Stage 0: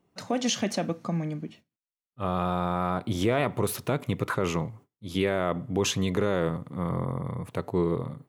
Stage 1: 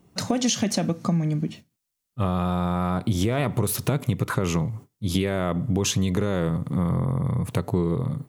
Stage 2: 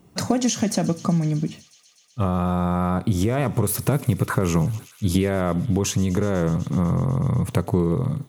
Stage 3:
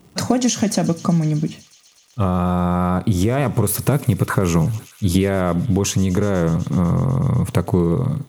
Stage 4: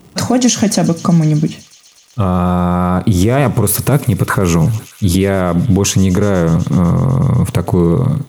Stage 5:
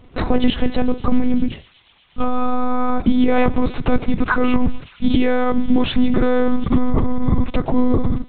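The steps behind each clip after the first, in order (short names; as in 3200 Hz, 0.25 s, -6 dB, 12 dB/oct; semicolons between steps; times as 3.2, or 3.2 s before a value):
tone controls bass +8 dB, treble +7 dB; compressor 4:1, threshold -29 dBFS, peak gain reduction 11.5 dB; gain +8 dB
thin delay 0.124 s, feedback 82%, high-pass 2700 Hz, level -18 dB; dynamic EQ 3500 Hz, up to -7 dB, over -46 dBFS, Q 1.2; vocal rider within 4 dB 0.5 s; gain +3 dB
crackle 160/s -45 dBFS; gain +3.5 dB
limiter -9 dBFS, peak gain reduction 7.5 dB; gain +7 dB
monotone LPC vocoder at 8 kHz 250 Hz; gain -2 dB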